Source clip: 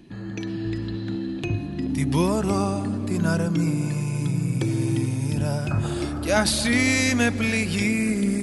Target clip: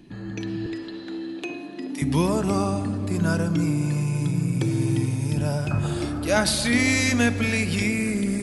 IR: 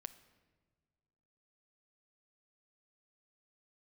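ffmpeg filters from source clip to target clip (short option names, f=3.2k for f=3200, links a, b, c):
-filter_complex "[0:a]asettb=1/sr,asplit=3[a][b][c];[a]atrim=end=0.664[d];[b]atrim=start=0.66:end=2.02,asetpts=PTS-STARTPTS,afade=t=in:d=0.004:c=qsin,afade=t=out:st=1.356:d=0.004:c=qsin,highpass=f=290:w=0.5412,highpass=f=290:w=1.3066[e];[c]atrim=start=2.016[f];[d][e]acrossfade=d=0.004:c1=hsin:c2=qsin[g];[g][f]acrossfade=d=0.004:c1=qsin:c2=hsin[h];[1:a]atrim=start_sample=2205[i];[h][i]afir=irnorm=-1:irlink=0,volume=4.5dB"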